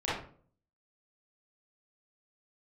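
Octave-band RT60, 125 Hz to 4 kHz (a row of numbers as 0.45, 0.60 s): 0.70, 0.60, 0.55, 0.45, 0.35, 0.30 s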